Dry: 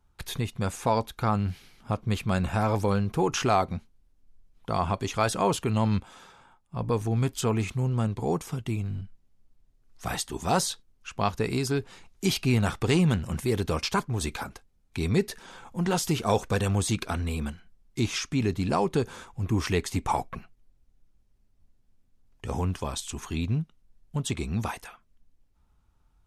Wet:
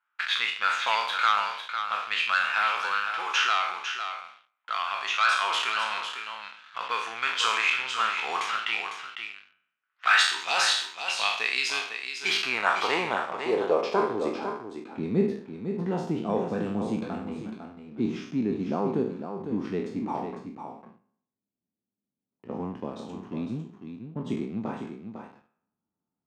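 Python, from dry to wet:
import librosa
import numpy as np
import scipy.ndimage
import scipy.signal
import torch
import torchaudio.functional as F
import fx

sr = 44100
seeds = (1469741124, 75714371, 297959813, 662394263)

y = fx.spec_trails(x, sr, decay_s=0.71)
y = fx.weighting(y, sr, curve='A')
y = fx.env_lowpass(y, sr, base_hz=2100.0, full_db=-24.5)
y = fx.peak_eq(y, sr, hz=1400.0, db=fx.steps((0.0, 13.5), (10.45, -2.0)), octaves=0.94)
y = fx.leveller(y, sr, passes=2)
y = fx.rider(y, sr, range_db=5, speed_s=2.0)
y = fx.filter_sweep_bandpass(y, sr, from_hz=2800.0, to_hz=210.0, start_s=11.7, end_s=14.78, q=1.8)
y = y + 10.0 ** (-8.0 / 20.0) * np.pad(y, (int(502 * sr / 1000.0), 0))[:len(y)]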